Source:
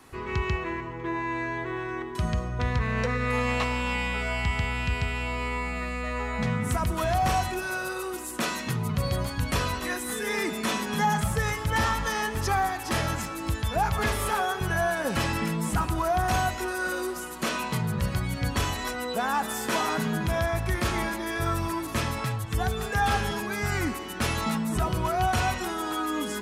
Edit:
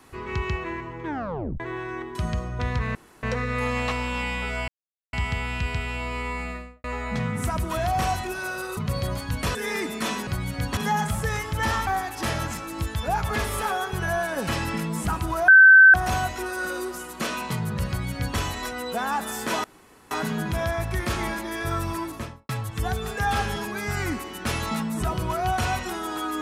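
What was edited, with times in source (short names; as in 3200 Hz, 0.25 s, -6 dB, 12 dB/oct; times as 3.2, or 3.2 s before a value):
1.05 tape stop 0.55 s
2.95 insert room tone 0.28 s
4.4 insert silence 0.45 s
5.7–6.11 studio fade out
8.04–8.86 cut
9.64–10.18 cut
12–12.55 cut
16.16 add tone 1540 Hz -7.5 dBFS 0.46 s
18.1–18.6 copy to 10.9
19.86 insert room tone 0.47 s
21.75–22.24 studio fade out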